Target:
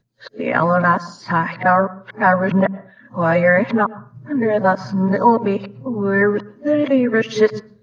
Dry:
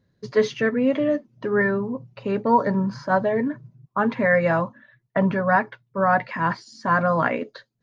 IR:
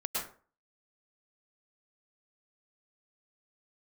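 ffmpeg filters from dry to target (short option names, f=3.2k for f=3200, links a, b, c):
-filter_complex "[0:a]areverse,asplit=2[a][b];[1:a]atrim=start_sample=2205,lowpass=4.4k,lowshelf=f=200:g=12[c];[b][c]afir=irnorm=-1:irlink=0,volume=-24.5dB[d];[a][d]amix=inputs=2:normalize=0,volume=4.5dB"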